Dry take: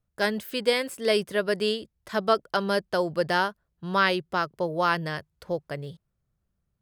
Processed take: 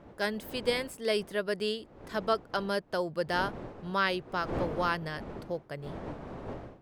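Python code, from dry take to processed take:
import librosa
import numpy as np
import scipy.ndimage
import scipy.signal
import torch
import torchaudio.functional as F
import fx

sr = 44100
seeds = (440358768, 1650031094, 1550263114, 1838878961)

y = fx.dmg_wind(x, sr, seeds[0], corner_hz=510.0, level_db=-37.0)
y = y * 10.0 ** (-6.0 / 20.0)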